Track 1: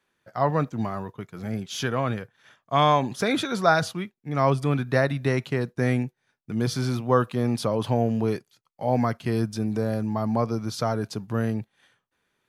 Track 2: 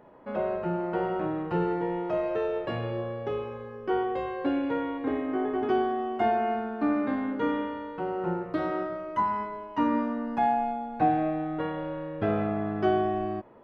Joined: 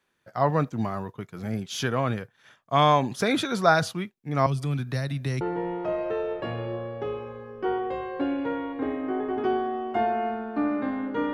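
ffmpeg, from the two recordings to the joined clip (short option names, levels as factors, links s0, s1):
-filter_complex "[0:a]asettb=1/sr,asplit=3[s0][s1][s2];[s0]atrim=end=4.464[s3];[s1]atrim=start=4.46:end=5.41,asetpts=PTS-STARTPTS,afade=t=in:d=0.004:c=qsin,afade=t=out:st=0.946:d=0.004:c=qsin,acrossover=split=180|3000[s4][s5][s6];[s5]acompressor=threshold=0.0178:ratio=4:attack=3.2:release=140:knee=2.83:detection=peak[s7];[s4][s7][s6]amix=inputs=3:normalize=0[s8];[s2]atrim=start=5.406[s9];[s3][s8]acrossfade=d=0.004:c1=hsin:c2=qsin[s10];[s10][s9]acrossfade=d=0.004:c1=qsin:c2=hsin,apad=whole_dur=11.33,atrim=end=11.33,atrim=end=5.412[s11];[1:a]atrim=start=1.658:end=7.58[s12];[s11][s12]acrossfade=d=0.004:c1=hsin:c2=hsin"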